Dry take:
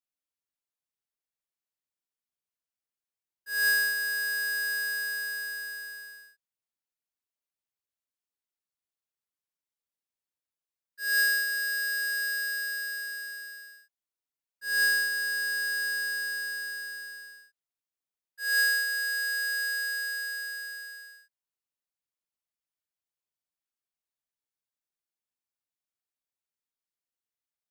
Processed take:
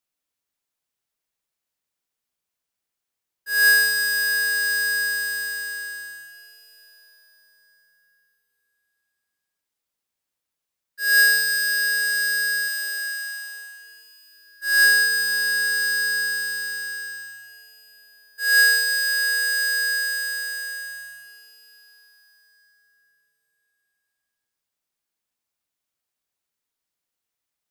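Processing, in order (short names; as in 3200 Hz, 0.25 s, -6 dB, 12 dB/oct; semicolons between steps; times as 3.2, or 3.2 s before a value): 12.68–14.85 HPF 590 Hz 12 dB/oct; plate-style reverb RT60 4.9 s, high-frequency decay 0.95×, pre-delay 90 ms, DRR 9.5 dB; gain +8.5 dB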